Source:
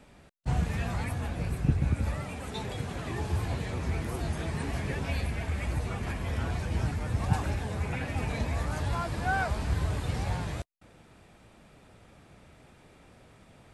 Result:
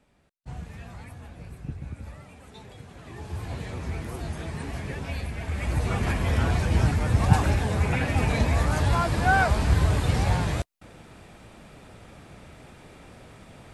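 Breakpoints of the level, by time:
0:02.92 −10 dB
0:03.60 −1 dB
0:05.34 −1 dB
0:05.95 +8 dB

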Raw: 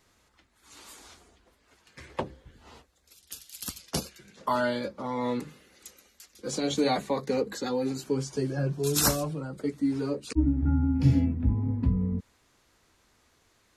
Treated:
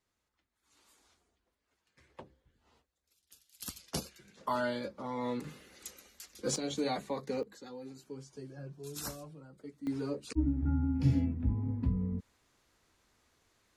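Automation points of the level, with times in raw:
−18 dB
from 0:03.60 −6 dB
from 0:05.44 +1 dB
from 0:06.56 −8 dB
from 0:07.43 −17 dB
from 0:09.87 −6 dB

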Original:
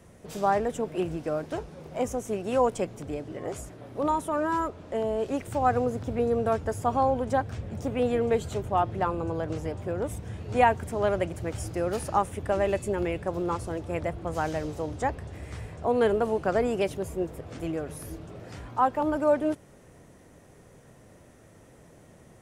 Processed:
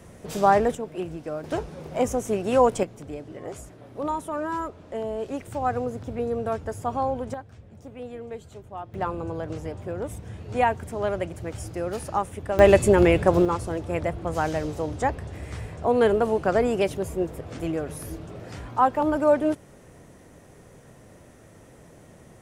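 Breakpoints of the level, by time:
+6 dB
from 0:00.75 −2.5 dB
from 0:01.44 +5 dB
from 0:02.83 −2 dB
from 0:07.34 −12 dB
from 0:08.94 −1 dB
from 0:12.59 +11.5 dB
from 0:13.45 +3.5 dB

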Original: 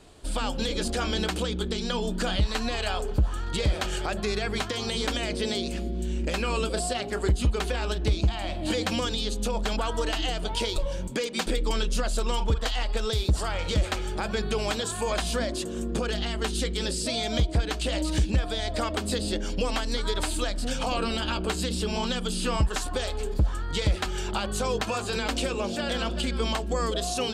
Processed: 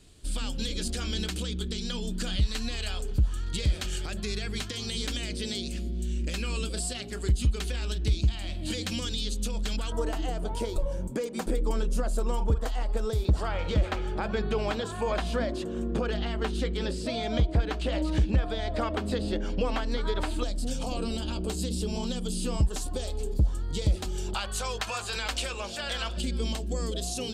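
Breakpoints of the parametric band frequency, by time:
parametric band −14.5 dB 2.3 octaves
800 Hz
from 0:09.92 3,400 Hz
from 0:13.25 10,000 Hz
from 0:20.43 1,600 Hz
from 0:24.34 260 Hz
from 0:26.17 1,200 Hz

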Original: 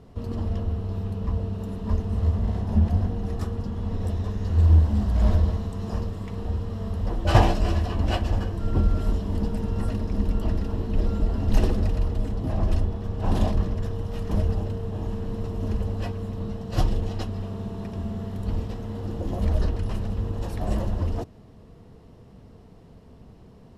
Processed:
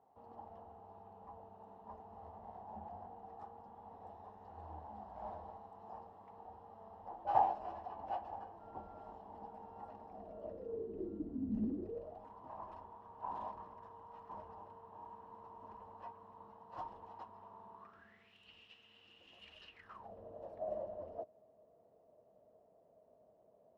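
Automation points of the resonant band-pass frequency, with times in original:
resonant band-pass, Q 9.8
0:10.06 820 Hz
0:11.62 220 Hz
0:12.27 950 Hz
0:17.73 950 Hz
0:18.36 2,800 Hz
0:19.70 2,800 Hz
0:20.13 620 Hz

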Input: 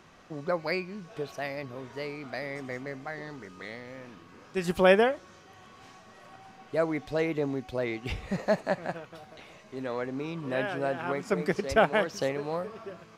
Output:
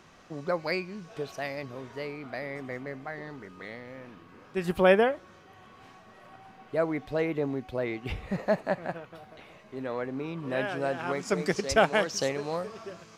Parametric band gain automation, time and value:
parametric band 6,400 Hz 1.4 octaves
0:01.77 +2 dB
0:02.17 −7.5 dB
0:10.35 −7.5 dB
0:10.60 +1 dB
0:11.37 +9.5 dB

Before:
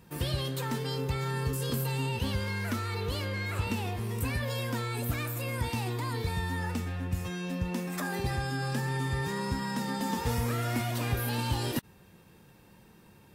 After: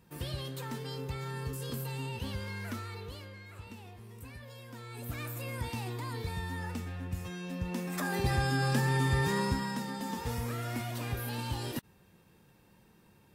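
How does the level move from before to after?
0:02.78 −6.5 dB
0:03.43 −16 dB
0:04.66 −16 dB
0:05.25 −5 dB
0:07.48 −5 dB
0:08.42 +3 dB
0:09.39 +3 dB
0:09.91 −5.5 dB

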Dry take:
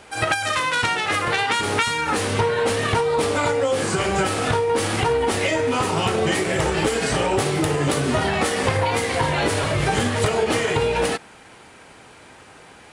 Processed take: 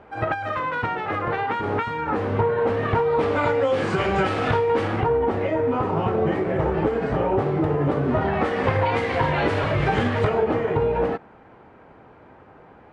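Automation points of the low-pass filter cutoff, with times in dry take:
0:02.59 1,200 Hz
0:03.70 2,700 Hz
0:04.68 2,700 Hz
0:05.11 1,100 Hz
0:08.01 1,100 Hz
0:08.87 2,400 Hz
0:10.13 2,400 Hz
0:10.55 1,100 Hz

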